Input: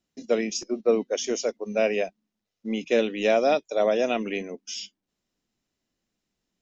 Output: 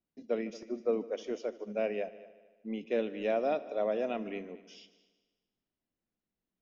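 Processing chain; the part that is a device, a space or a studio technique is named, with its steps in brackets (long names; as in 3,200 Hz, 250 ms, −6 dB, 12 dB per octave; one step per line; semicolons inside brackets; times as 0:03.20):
low-pass filter 5,400 Hz 12 dB per octave
through cloth (low-pass filter 6,600 Hz; high-shelf EQ 3,100 Hz −12 dB)
echo machine with several playback heads 75 ms, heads all three, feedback 43%, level −21 dB
level −8.5 dB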